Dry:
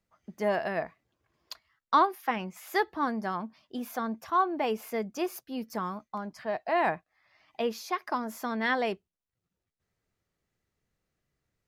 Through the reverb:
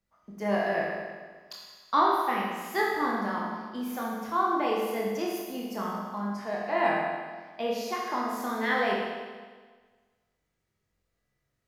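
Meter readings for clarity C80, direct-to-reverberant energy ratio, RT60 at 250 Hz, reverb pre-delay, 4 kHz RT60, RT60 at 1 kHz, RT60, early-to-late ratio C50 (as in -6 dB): 2.0 dB, -4.0 dB, 1.6 s, 20 ms, 1.5 s, 1.5 s, 1.5 s, -0.5 dB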